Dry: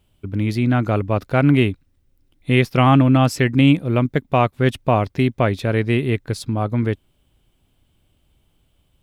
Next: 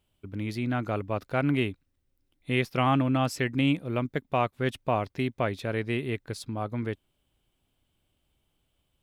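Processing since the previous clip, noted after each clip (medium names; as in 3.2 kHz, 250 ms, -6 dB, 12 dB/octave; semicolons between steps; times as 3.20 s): bass shelf 260 Hz -6 dB; trim -8 dB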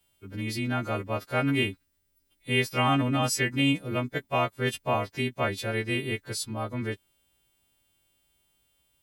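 partials quantised in pitch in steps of 2 st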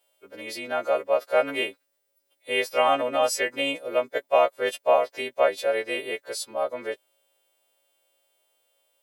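resonant high-pass 550 Hz, resonance Q 4.2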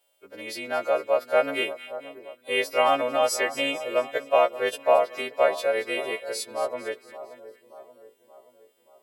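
two-band feedback delay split 1.3 kHz, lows 578 ms, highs 226 ms, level -14 dB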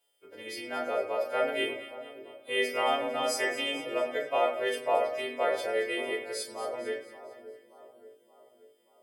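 simulated room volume 73 m³, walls mixed, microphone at 0.72 m; trim -6.5 dB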